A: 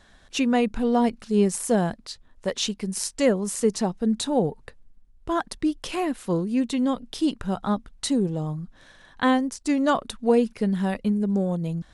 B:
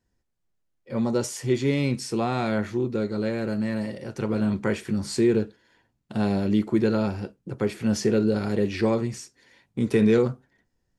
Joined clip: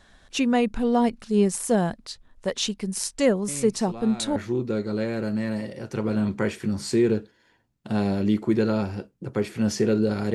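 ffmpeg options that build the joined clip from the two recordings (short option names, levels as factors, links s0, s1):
-filter_complex "[1:a]asplit=2[s0][s1];[0:a]apad=whole_dur=10.34,atrim=end=10.34,atrim=end=4.362[s2];[s1]atrim=start=2.608:end=8.59[s3];[s0]atrim=start=1.73:end=2.61,asetpts=PTS-STARTPTS,volume=0.237,afade=t=in:d=0.004:c=hsin,afade=t=out:st=0.876:d=0.004:c=hsin,adelay=3480[s4];[s2][s3]acrossfade=d=0.004:c1=hsin:c2=hsin[s5];[s5][s4]amix=inputs=2:normalize=0"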